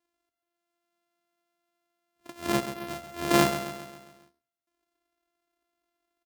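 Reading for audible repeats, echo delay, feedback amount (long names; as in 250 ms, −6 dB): 5, 135 ms, 52%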